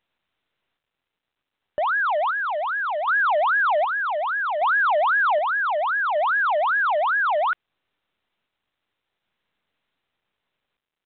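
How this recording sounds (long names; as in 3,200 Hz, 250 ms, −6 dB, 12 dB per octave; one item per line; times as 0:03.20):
sample-and-hold tremolo 1.3 Hz
mu-law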